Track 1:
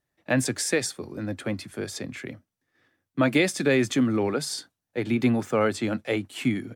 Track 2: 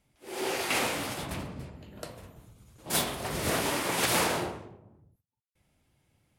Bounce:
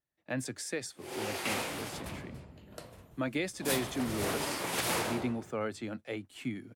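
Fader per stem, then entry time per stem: -12.0, -5.5 dB; 0.00, 0.75 s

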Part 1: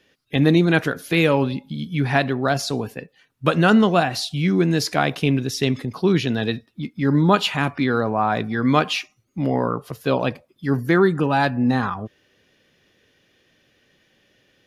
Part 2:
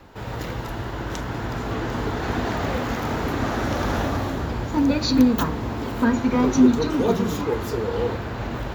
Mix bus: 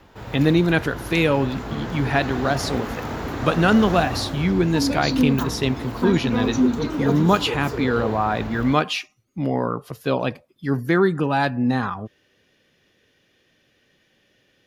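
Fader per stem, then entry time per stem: -1.5, -3.5 dB; 0.00, 0.00 s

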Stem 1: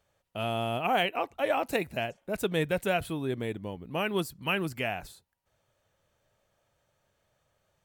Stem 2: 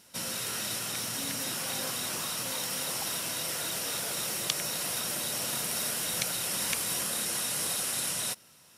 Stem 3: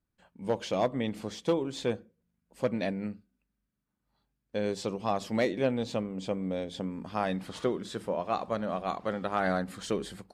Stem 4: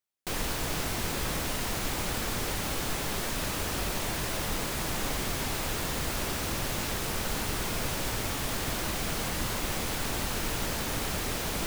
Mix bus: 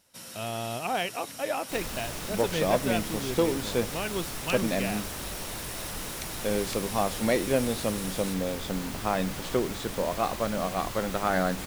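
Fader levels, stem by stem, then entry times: -3.0, -9.0, +2.5, -6.0 dB; 0.00, 0.00, 1.90, 1.45 s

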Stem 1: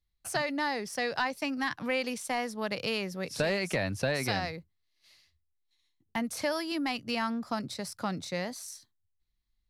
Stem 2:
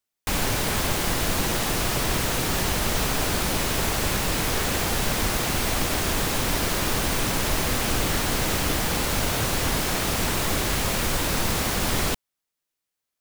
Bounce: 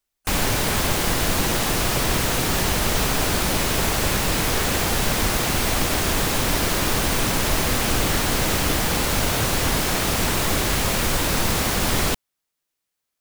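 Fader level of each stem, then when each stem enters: -12.0, +3.0 dB; 0.00, 0.00 s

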